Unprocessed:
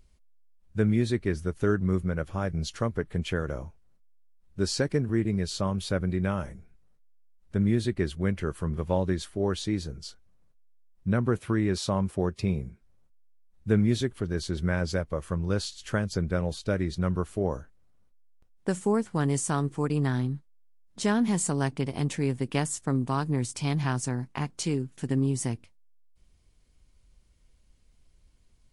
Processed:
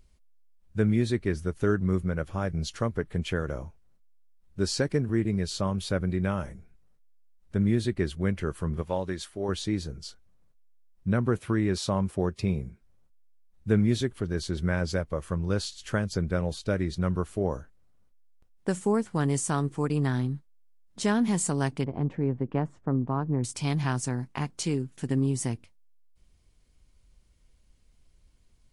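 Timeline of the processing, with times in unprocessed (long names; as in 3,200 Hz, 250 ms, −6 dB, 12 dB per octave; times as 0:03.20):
0:08.82–0:09.49: low-shelf EQ 360 Hz −8.5 dB
0:21.84–0:23.44: low-pass filter 1,100 Hz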